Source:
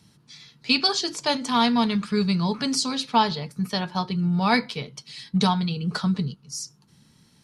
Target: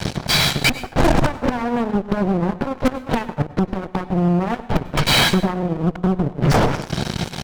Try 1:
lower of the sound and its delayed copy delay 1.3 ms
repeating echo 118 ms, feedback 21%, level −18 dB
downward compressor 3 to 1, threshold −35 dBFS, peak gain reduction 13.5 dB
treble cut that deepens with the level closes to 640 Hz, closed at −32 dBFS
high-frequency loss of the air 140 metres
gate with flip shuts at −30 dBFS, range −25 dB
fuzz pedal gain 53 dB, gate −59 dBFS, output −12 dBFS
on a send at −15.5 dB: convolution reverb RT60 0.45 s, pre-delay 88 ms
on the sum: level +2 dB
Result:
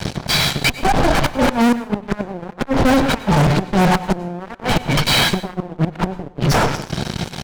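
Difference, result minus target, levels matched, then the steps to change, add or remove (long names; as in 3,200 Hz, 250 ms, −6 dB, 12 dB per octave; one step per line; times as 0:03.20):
downward compressor: peak gain reduction +4.5 dB
change: downward compressor 3 to 1, threshold −28 dBFS, peak gain reduction 8.5 dB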